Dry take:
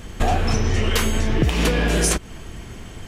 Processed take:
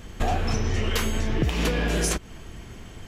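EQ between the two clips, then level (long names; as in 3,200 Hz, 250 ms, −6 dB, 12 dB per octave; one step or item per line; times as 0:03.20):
parametric band 9,000 Hz −5.5 dB 0.23 octaves
−5.0 dB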